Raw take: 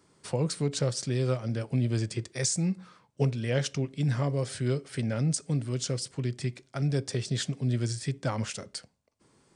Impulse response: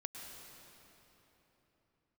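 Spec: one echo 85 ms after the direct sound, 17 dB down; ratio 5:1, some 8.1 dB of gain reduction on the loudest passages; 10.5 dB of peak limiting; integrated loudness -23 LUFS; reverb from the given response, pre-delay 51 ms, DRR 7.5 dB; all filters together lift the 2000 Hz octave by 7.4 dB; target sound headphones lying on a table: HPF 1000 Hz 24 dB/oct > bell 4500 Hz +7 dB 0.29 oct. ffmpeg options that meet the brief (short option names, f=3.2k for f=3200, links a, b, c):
-filter_complex "[0:a]equalizer=f=2k:t=o:g=9,acompressor=threshold=-29dB:ratio=5,alimiter=level_in=4dB:limit=-24dB:level=0:latency=1,volume=-4dB,aecho=1:1:85:0.141,asplit=2[a][b];[1:a]atrim=start_sample=2205,adelay=51[c];[b][c]afir=irnorm=-1:irlink=0,volume=-5.5dB[d];[a][d]amix=inputs=2:normalize=0,highpass=f=1k:w=0.5412,highpass=f=1k:w=1.3066,equalizer=f=4.5k:t=o:w=0.29:g=7,volume=17.5dB"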